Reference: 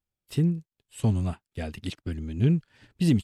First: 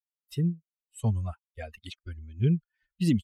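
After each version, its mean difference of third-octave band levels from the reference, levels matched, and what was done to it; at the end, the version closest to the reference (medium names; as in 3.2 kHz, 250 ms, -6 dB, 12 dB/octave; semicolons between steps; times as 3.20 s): 7.0 dB: expander on every frequency bin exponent 2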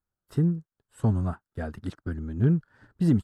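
3.5 dB: resonant high shelf 1.9 kHz -9 dB, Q 3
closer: second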